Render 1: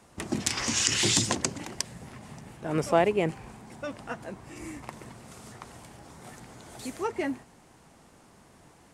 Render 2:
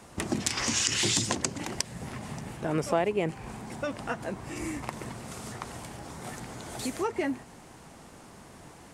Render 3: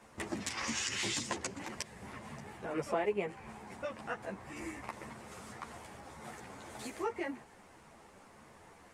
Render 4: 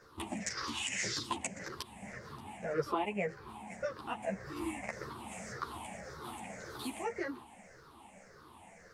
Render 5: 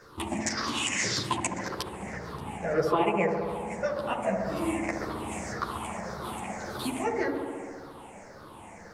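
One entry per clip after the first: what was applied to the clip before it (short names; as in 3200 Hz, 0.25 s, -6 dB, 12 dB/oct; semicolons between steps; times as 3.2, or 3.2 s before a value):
compressor 2:1, threshold -37 dBFS, peak gain reduction 11.5 dB; gain +6.5 dB
ten-band EQ 500 Hz +4 dB, 1000 Hz +4 dB, 2000 Hz +6 dB; ensemble effect; gain -8 dB
moving spectral ripple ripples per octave 0.57, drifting -1.8 Hz, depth 17 dB; vocal rider within 4 dB 2 s; gain -3 dB
dark delay 69 ms, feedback 80%, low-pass 1000 Hz, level -4 dB; gain +7 dB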